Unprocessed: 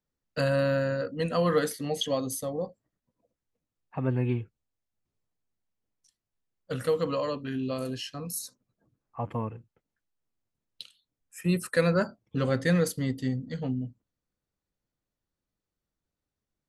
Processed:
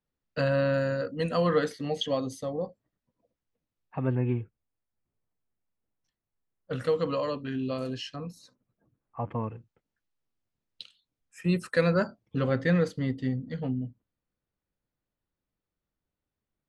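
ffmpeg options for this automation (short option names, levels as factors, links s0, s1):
-af "asetnsamples=n=441:p=0,asendcmd='0.74 lowpass f 9600;1.47 lowpass f 4500;4.15 lowpass f 2100;6.73 lowpass f 5500;8.16 lowpass f 2600;9.44 lowpass f 5800;12.39 lowpass f 3300',lowpass=4200"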